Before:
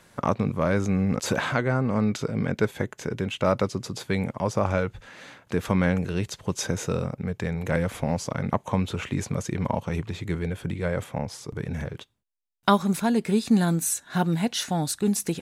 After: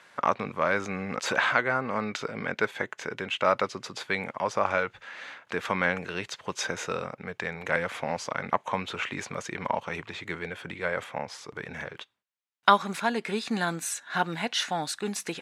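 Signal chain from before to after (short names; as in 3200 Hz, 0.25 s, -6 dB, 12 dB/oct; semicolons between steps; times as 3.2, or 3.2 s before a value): band-pass 1800 Hz, Q 0.72; gain +5 dB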